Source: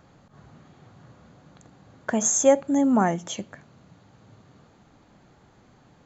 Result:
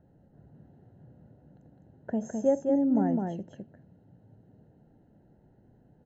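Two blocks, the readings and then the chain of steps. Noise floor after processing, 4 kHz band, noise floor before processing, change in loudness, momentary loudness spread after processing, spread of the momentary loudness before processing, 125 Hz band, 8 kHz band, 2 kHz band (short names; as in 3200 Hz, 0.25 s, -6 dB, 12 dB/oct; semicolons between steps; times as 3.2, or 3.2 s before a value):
-62 dBFS, under -20 dB, -57 dBFS, -5.5 dB, 13 LU, 16 LU, -3.0 dB, n/a, under -15 dB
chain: running mean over 38 samples; on a send: echo 0.208 s -4 dB; on the sum: gain -4 dB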